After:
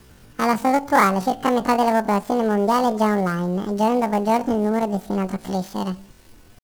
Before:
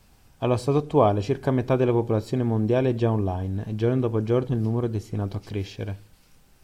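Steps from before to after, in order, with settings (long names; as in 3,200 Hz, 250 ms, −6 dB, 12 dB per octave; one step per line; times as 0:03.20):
gap after every zero crossing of 0.11 ms
in parallel at +2 dB: downward compressor, threshold −34 dBFS, peak gain reduction 19 dB
on the sum: tape wow and flutter 22 cents
pitch shifter +11 semitones
level +1.5 dB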